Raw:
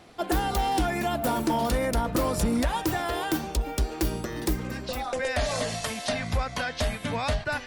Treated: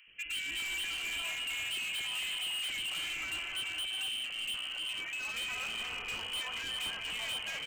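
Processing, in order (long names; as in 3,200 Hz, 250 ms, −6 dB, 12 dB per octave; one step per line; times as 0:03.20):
reverb whose tail is shaped and stops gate 460 ms rising, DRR 4 dB
voice inversion scrambler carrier 3,100 Hz
gain into a clipping stage and back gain 27.5 dB
three-band delay without the direct sound highs, lows, mids 70/290 ms, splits 490/1,500 Hz
level −6.5 dB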